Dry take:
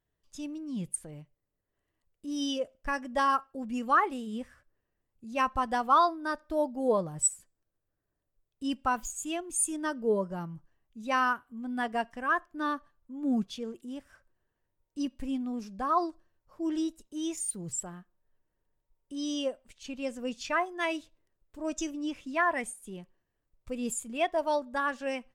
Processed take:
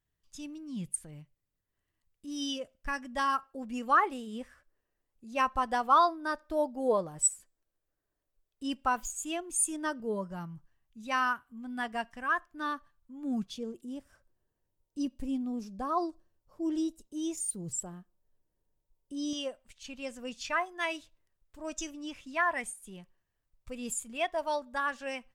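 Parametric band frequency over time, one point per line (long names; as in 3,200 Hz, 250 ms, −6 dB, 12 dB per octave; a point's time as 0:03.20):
parametric band −7.5 dB 1.9 octaves
510 Hz
from 0:03.43 120 Hz
from 0:10.00 420 Hz
from 0:13.53 1,800 Hz
from 0:19.33 340 Hz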